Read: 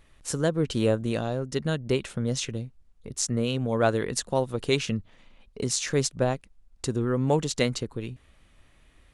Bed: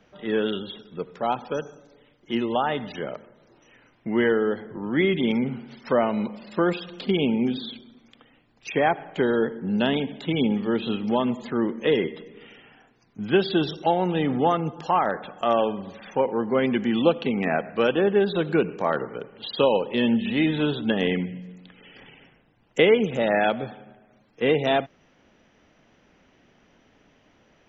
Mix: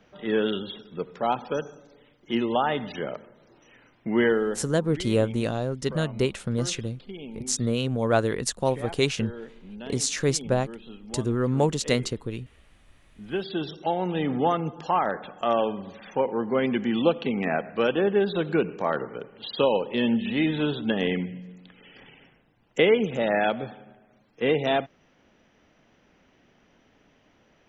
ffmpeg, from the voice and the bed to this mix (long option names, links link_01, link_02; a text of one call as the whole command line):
ffmpeg -i stem1.wav -i stem2.wav -filter_complex "[0:a]adelay=4300,volume=1dB[link_01];[1:a]volume=15dB,afade=type=out:start_time=4.25:duration=0.64:silence=0.141254,afade=type=in:start_time=12.92:duration=1.45:silence=0.177828[link_02];[link_01][link_02]amix=inputs=2:normalize=0" out.wav